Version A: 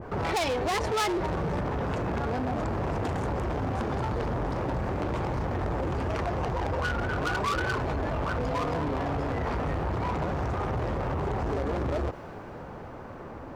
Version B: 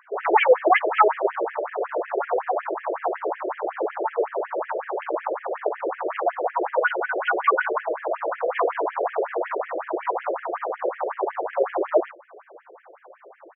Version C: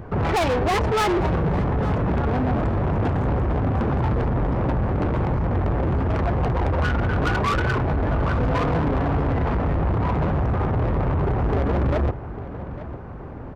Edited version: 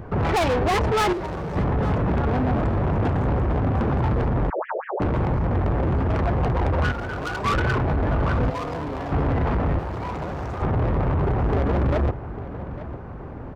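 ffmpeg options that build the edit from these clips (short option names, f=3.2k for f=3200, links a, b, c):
-filter_complex "[0:a]asplit=4[a][b][c][d];[2:a]asplit=6[e][f][g][h][i][j];[e]atrim=end=1.132[k];[a]atrim=start=1.128:end=1.562[l];[f]atrim=start=1.558:end=4.502[m];[1:a]atrim=start=4.498:end=5.002[n];[g]atrim=start=4.998:end=6.922[o];[b]atrim=start=6.918:end=7.452[p];[h]atrim=start=7.448:end=8.502[q];[c]atrim=start=8.498:end=9.122[r];[i]atrim=start=9.118:end=9.792[s];[d]atrim=start=9.788:end=10.622[t];[j]atrim=start=10.618[u];[k][l]acrossfade=d=0.004:c1=hsin:c2=hsin[v];[v][m]acrossfade=d=0.004:c1=hsin:c2=hsin[w];[w][n]acrossfade=d=0.004:c1=hsin:c2=hsin[x];[x][o]acrossfade=d=0.004:c1=hsin:c2=hsin[y];[y][p]acrossfade=d=0.004:c1=hsin:c2=hsin[z];[z][q]acrossfade=d=0.004:c1=hsin:c2=hsin[aa];[aa][r]acrossfade=d=0.004:c1=hsin:c2=hsin[ab];[ab][s]acrossfade=d=0.004:c1=hsin:c2=hsin[ac];[ac][t]acrossfade=d=0.004:c1=hsin:c2=hsin[ad];[ad][u]acrossfade=d=0.004:c1=hsin:c2=hsin"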